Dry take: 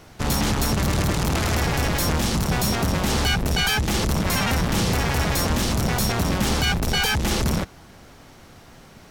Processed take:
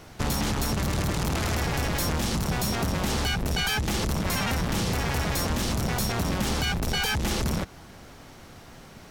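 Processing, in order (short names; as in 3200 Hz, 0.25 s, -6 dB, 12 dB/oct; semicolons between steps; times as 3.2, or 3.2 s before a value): compressor, threshold -23 dBFS, peak gain reduction 6 dB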